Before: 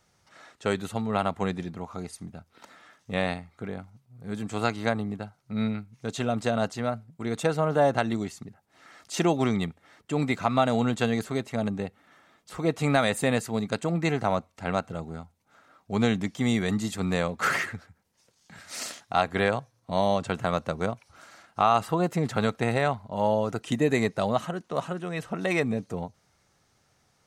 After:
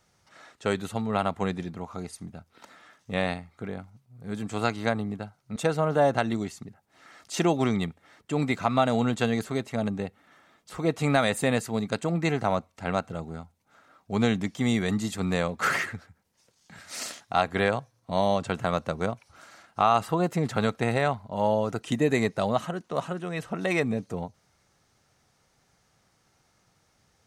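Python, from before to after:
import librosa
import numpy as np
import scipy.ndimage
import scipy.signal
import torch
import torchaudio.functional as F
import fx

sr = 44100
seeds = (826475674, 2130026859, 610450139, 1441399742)

y = fx.edit(x, sr, fx.cut(start_s=5.56, length_s=1.8), tone=tone)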